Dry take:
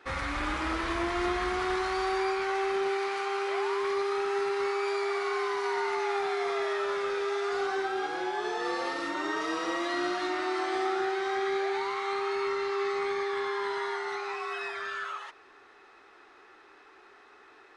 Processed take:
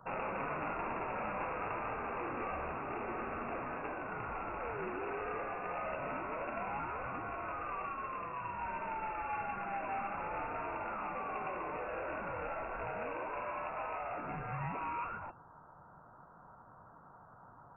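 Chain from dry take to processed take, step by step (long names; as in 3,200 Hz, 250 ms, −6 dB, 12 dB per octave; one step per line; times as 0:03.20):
Butterworth high-pass 1,500 Hz 36 dB per octave
asymmetric clip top −45 dBFS
voice inversion scrambler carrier 2,700 Hz
level +3.5 dB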